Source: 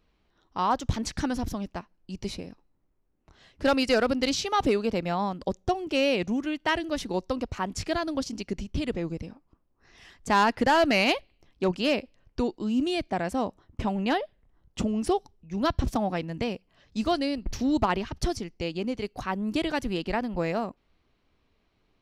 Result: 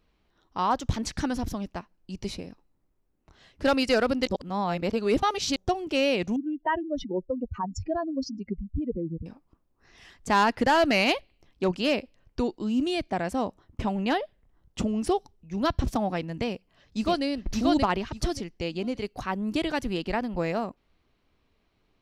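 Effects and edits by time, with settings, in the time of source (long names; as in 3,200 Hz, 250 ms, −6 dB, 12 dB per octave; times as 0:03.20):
0:04.27–0:05.56: reverse
0:06.36–0:09.26: expanding power law on the bin magnitudes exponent 2.7
0:16.49–0:17.24: delay throw 580 ms, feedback 20%, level −1 dB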